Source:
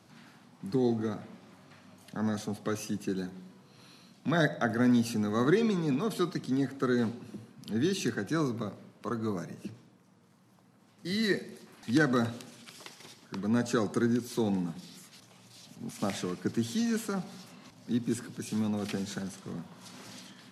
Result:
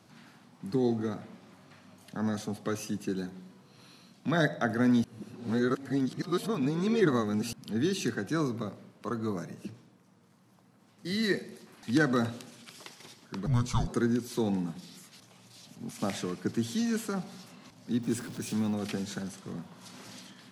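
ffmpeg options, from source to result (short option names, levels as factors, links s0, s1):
-filter_complex "[0:a]asettb=1/sr,asplit=3[s0][s1][s2];[s0]atrim=end=13.464[s3];[s1]atrim=start=13.46:end=13.88,asetpts=PTS-STARTPTS,afade=t=in:d=0.004:c=qsin,afade=t=out:st=0.416:d=0.004:c=qsin,afreqshift=-360[s4];[s2]atrim=start=13.876[s5];[s3][s4]acrossfade=d=0.004:c1=hsin:c2=qsin[s6];[s6][s5]acrossfade=d=0.004:c1=qsin:c2=hsin,asettb=1/sr,asplit=3[s7][s8][s9];[s7]atrim=end=18.034[s10];[s8]atrim=start=18.03:end=18.74,asetpts=PTS-STARTPTS,afade=t=in:d=0.004:c=qsin,afade=t=out:st=0.706:d=0.004:c=qsin,aeval=exprs='val(0)+0.5*0.00668*sgn(val(0))':c=same[s11];[s9]atrim=start=18.736[s12];[s10][s11]acrossfade=d=0.004:c1=hsin:c2=qsin[s13];[s13][s12]acrossfade=d=0.004:c1=qsin:c2=hsin,asplit=3[s14][s15][s16];[s14]atrim=end=5.042[s17];[s15]atrim=start=5.038:end=7.532,asetpts=PTS-STARTPTS,areverse[s18];[s16]atrim=start=7.528[s19];[s17][s18]acrossfade=d=0.004:c1=hsin:c2=hsin[s20];[s20][s19]acrossfade=d=0.004:c1=hsin:c2=hsin"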